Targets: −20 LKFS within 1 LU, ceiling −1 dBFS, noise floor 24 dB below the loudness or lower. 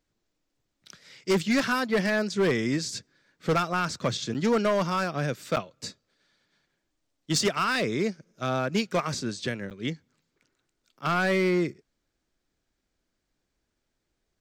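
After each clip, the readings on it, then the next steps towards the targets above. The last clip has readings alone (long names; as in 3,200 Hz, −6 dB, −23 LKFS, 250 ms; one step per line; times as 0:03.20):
share of clipped samples 1.1%; peaks flattened at −18.5 dBFS; number of dropouts 3; longest dropout 8.4 ms; integrated loudness −27.0 LKFS; sample peak −18.5 dBFS; target loudness −20.0 LKFS
→ clipped peaks rebuilt −18.5 dBFS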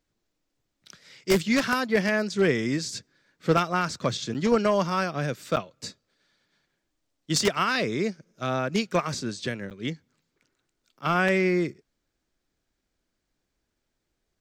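share of clipped samples 0.0%; number of dropouts 3; longest dropout 8.4 ms
→ repair the gap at 0:04.34/0:05.56/0:09.70, 8.4 ms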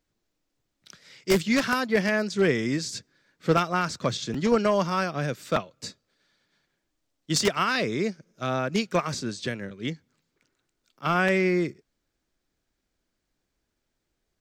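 number of dropouts 0; integrated loudness −26.0 LKFS; sample peak −9.5 dBFS; target loudness −20.0 LKFS
→ level +6 dB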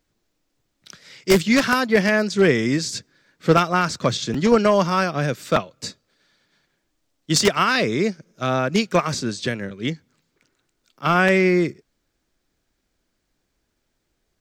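integrated loudness −20.0 LKFS; sample peak −3.5 dBFS; background noise floor −74 dBFS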